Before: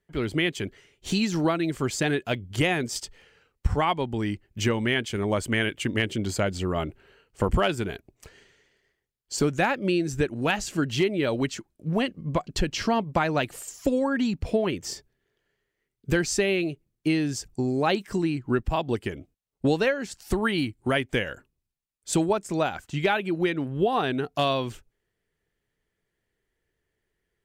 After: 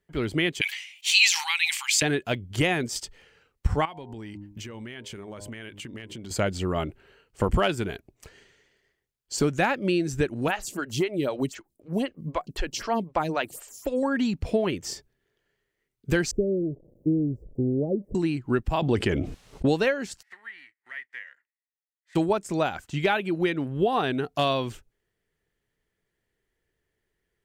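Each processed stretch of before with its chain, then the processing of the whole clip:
0.61–2.02 brick-wall FIR high-pass 780 Hz + resonant high shelf 1800 Hz +9 dB, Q 3 + sustainer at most 81 dB/s
3.85–6.31 de-hum 101.9 Hz, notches 10 + compressor 16:1, threshold -35 dBFS
10.48–14.03 high shelf 7000 Hz +7 dB + photocell phaser 3.9 Hz
16.31–18.15 switching spikes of -18.5 dBFS + elliptic low-pass 550 Hz, stop band 60 dB + low shelf 70 Hz +12 dB
18.82–19.69 air absorption 66 m + fast leveller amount 70%
20.21–22.15 spectral whitening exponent 0.6 + band-pass 1900 Hz, Q 15
whole clip: dry

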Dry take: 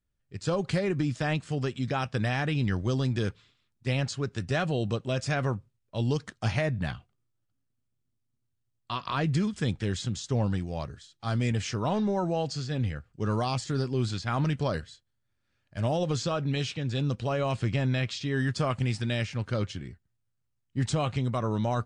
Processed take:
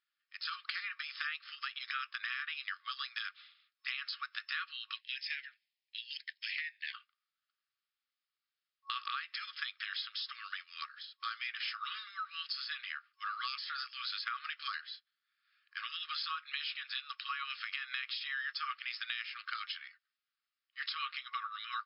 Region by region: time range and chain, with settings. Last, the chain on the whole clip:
4.94–6.94 steep high-pass 1800 Hz 72 dB/oct + dynamic EQ 3900 Hz, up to -4 dB, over -52 dBFS, Q 1.1 + hard clip -30 dBFS
whole clip: FFT band-pass 1100–5300 Hz; compressor 6:1, threshold -41 dBFS; gain +5.5 dB

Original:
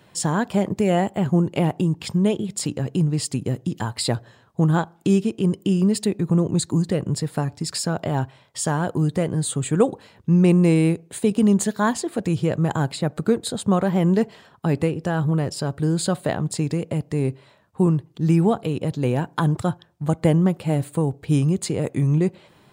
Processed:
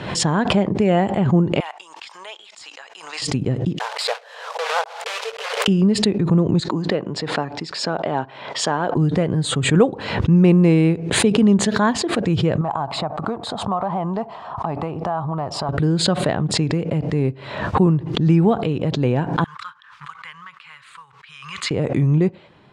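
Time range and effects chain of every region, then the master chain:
1.6–3.22 HPF 910 Hz 24 dB/oct + bell 6900 Hz +8 dB 1.6 oct + de-esser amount 80%
3.79–5.68 block floating point 3-bit + brick-wall FIR high-pass 430 Hz + high shelf 6500 Hz +6.5 dB
6.6–8.96 BPF 260–6300 Hz + bell 860 Hz +2.5 dB 1.1 oct
12.61–15.69 band shelf 890 Hz +16 dB 1.2 oct + compressor 2.5:1, threshold -28 dBFS
19.44–21.71 elliptic high-pass 1100 Hz + high shelf 3600 Hz -10 dB + short-mantissa float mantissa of 2-bit
whole clip: LPF 3800 Hz 12 dB/oct; backwards sustainer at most 63 dB/s; gain +2.5 dB

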